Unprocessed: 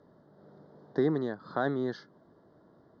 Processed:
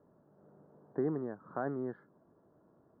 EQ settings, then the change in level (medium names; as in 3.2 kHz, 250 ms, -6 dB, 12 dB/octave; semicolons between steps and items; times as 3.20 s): low-pass 1.5 kHz 24 dB/octave; -6.0 dB